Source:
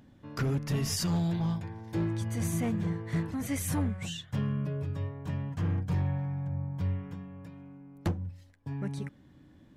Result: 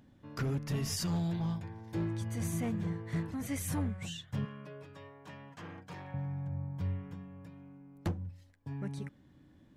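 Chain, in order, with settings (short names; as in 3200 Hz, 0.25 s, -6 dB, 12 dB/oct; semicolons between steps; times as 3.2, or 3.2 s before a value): 4.45–6.14 weighting filter A; gain -4 dB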